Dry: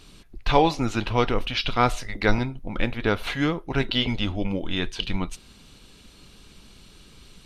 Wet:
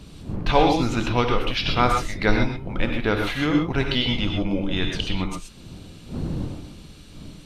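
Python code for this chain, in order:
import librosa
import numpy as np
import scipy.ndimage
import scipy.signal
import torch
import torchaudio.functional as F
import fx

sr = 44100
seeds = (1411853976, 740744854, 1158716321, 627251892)

y = fx.dmg_wind(x, sr, seeds[0], corner_hz=190.0, level_db=-36.0)
y = fx.rev_gated(y, sr, seeds[1], gate_ms=150, shape='rising', drr_db=2.5)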